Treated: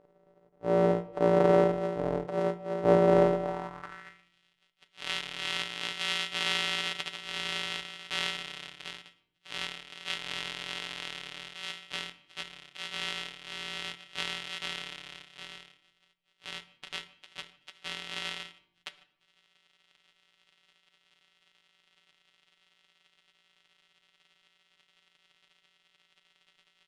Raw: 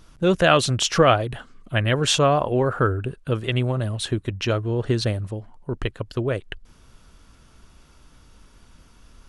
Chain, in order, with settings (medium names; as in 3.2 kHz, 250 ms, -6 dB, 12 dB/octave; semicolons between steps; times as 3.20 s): sorted samples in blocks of 128 samples; wide varispeed 0.553×; band-pass sweep 540 Hz -> 3.1 kHz, 2.10–2.72 s; granular stretch 1.6×, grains 36 ms; speakerphone echo 150 ms, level -24 dB; on a send at -12 dB: reverberation RT60 0.75 s, pre-delay 5 ms; on the sum: trim +2.5 dB